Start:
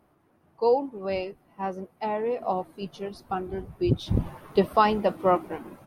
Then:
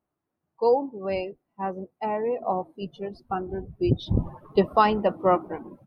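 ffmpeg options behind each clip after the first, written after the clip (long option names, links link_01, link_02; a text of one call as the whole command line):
ffmpeg -i in.wav -af "afftdn=noise_reduction=20:noise_floor=-42,volume=1dB" out.wav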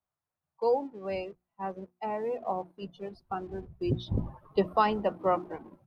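ffmpeg -i in.wav -filter_complex "[0:a]bandreject=frequency=60:width_type=h:width=6,bandreject=frequency=120:width_type=h:width=6,bandreject=frequency=180:width_type=h:width=6,bandreject=frequency=240:width_type=h:width=6,bandreject=frequency=300:width_type=h:width=6,bandreject=frequency=360:width_type=h:width=6,acrossover=split=180|520|1000[link_01][link_02][link_03][link_04];[link_02]aeval=exprs='sgn(val(0))*max(abs(val(0))-0.00188,0)':channel_layout=same[link_05];[link_01][link_05][link_03][link_04]amix=inputs=4:normalize=0,volume=-5.5dB" out.wav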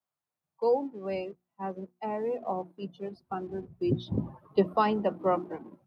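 ffmpeg -i in.wav -filter_complex "[0:a]highpass=150,acrossover=split=410|1500[link_01][link_02][link_03];[link_01]dynaudnorm=framelen=260:gausssize=3:maxgain=6dB[link_04];[link_04][link_02][link_03]amix=inputs=3:normalize=0,volume=-1.5dB" out.wav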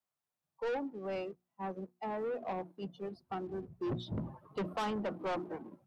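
ffmpeg -i in.wav -af "asoftclip=type=tanh:threshold=-30dB,volume=-2dB" out.wav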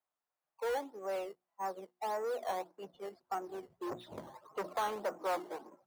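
ffmpeg -i in.wav -filter_complex "[0:a]acrossover=split=430 2300:gain=0.0708 1 0.251[link_01][link_02][link_03];[link_01][link_02][link_03]amix=inputs=3:normalize=0,asplit=2[link_04][link_05];[link_05]acrusher=samples=12:mix=1:aa=0.000001:lfo=1:lforange=12:lforate=1.7,volume=-6dB[link_06];[link_04][link_06]amix=inputs=2:normalize=0,volume=1dB" out.wav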